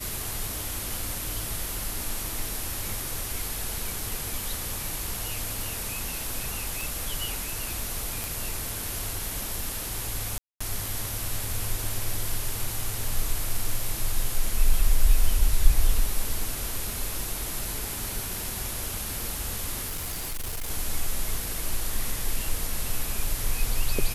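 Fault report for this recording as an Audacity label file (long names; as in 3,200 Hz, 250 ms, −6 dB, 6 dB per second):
6.810000	6.810000	click
8.240000	8.240000	click
10.380000	10.610000	drop-out 225 ms
19.880000	20.710000	clipping −28 dBFS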